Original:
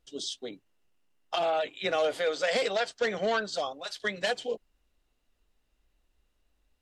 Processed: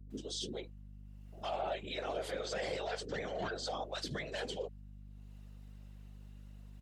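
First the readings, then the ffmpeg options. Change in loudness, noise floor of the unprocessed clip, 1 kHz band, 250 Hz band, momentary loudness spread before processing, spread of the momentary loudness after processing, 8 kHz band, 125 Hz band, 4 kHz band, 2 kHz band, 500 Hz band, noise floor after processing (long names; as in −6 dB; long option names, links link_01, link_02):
−9.5 dB, −75 dBFS, −8.5 dB, −4.5 dB, 9 LU, 17 LU, −5.5 dB, +3.5 dB, −8.0 dB, −11.5 dB, −10.0 dB, −52 dBFS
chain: -filter_complex "[0:a]highpass=240,lowshelf=frequency=470:gain=10,alimiter=level_in=3dB:limit=-24dB:level=0:latency=1:release=17,volume=-3dB,acompressor=mode=upward:threshold=-55dB:ratio=2.5,afftfilt=real='hypot(re,im)*cos(2*PI*random(0))':imag='hypot(re,im)*sin(2*PI*random(1))':win_size=512:overlap=0.75,aeval=exprs='val(0)+0.00224*(sin(2*PI*50*n/s)+sin(2*PI*2*50*n/s)/2+sin(2*PI*3*50*n/s)/3+sin(2*PI*4*50*n/s)/4+sin(2*PI*5*50*n/s)/5)':channel_layout=same,acrossover=split=370[link_01][link_02];[link_02]adelay=110[link_03];[link_01][link_03]amix=inputs=2:normalize=0,volume=3dB"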